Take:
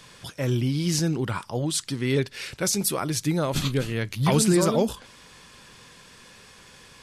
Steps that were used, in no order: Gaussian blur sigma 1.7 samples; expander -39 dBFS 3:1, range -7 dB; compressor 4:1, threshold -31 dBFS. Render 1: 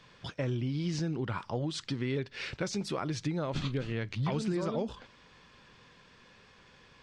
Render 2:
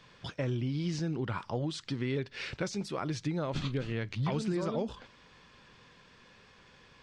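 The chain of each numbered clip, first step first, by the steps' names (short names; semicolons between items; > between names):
Gaussian blur > expander > compressor; expander > compressor > Gaussian blur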